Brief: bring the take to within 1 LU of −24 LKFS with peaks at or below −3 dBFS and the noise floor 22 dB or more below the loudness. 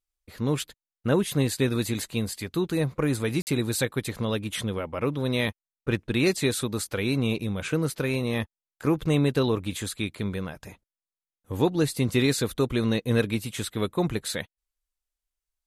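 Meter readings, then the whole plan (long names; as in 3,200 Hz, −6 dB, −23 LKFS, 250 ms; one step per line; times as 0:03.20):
number of dropouts 1; longest dropout 49 ms; integrated loudness −27.0 LKFS; sample peak −9.0 dBFS; target loudness −24.0 LKFS
→ repair the gap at 0:03.42, 49 ms
level +3 dB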